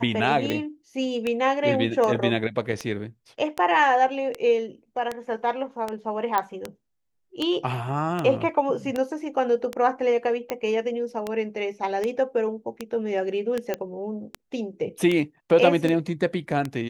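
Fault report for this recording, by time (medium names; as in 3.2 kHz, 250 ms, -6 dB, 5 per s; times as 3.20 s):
tick 78 rpm -13 dBFS
6.38 s: pop -10 dBFS
13.74 s: pop -13 dBFS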